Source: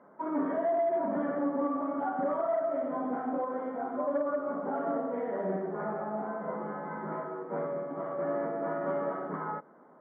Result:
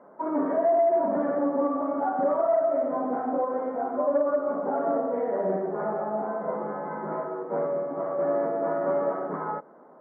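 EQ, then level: distance through air 150 m; peaking EQ 590 Hz +7.5 dB 2.1 oct; 0.0 dB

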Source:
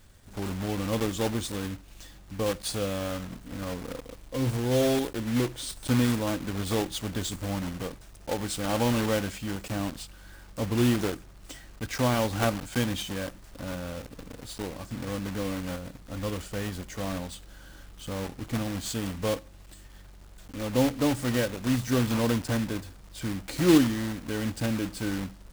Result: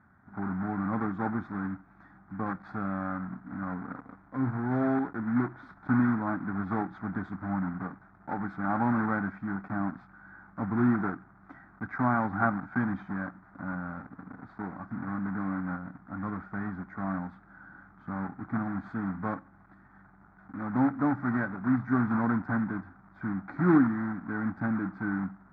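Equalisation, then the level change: cabinet simulation 140–2000 Hz, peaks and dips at 190 Hz +6 dB, 270 Hz +4 dB, 480 Hz +8 dB, 760 Hz +6 dB, 1.4 kHz +8 dB; static phaser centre 1.2 kHz, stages 4; 0.0 dB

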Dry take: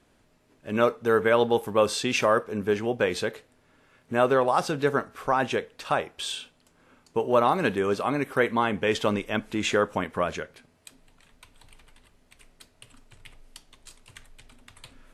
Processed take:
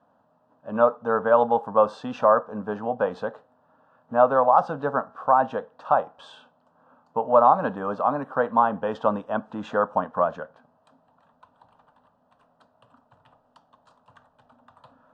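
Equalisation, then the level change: high-pass 260 Hz 12 dB/octave; low-pass 1.2 kHz 12 dB/octave; static phaser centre 900 Hz, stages 4; +8.5 dB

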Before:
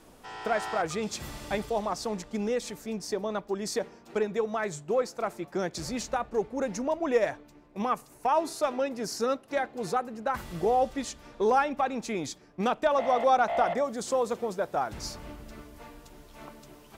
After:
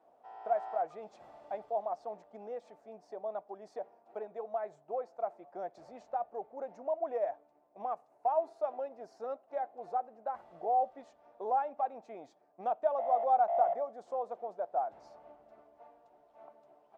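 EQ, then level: band-pass filter 700 Hz, Q 5.1; 0.0 dB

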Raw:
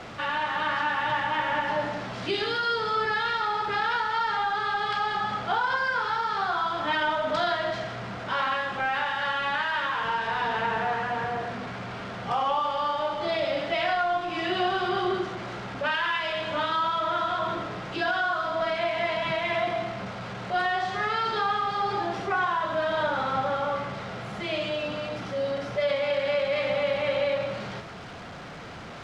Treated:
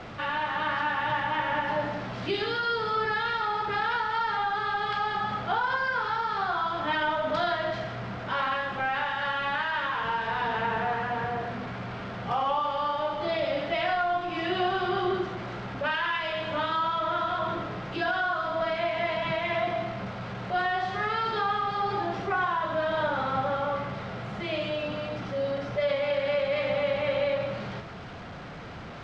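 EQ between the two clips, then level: distance through air 82 m; bass shelf 160 Hz +5 dB; -1.0 dB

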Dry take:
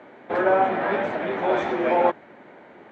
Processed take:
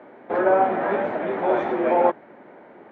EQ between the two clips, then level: low-pass 1.1 kHz 6 dB/octave; bass shelf 120 Hz -10.5 dB; +3.0 dB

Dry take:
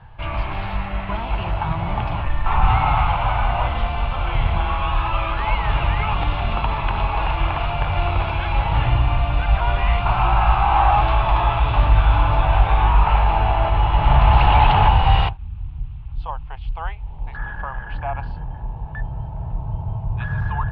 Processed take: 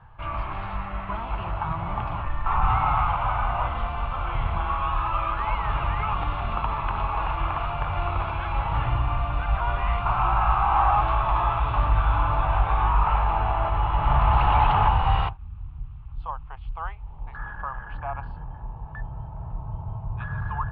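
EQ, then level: low-pass 2.7 kHz 6 dB/octave; peaking EQ 1.2 kHz +9 dB 0.59 oct; -7.0 dB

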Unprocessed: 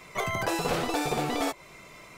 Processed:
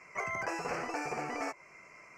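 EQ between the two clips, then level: Chebyshev band-stop 2.3–5.5 kHz, order 2; distance through air 170 m; tilt EQ +3 dB/octave; -4.5 dB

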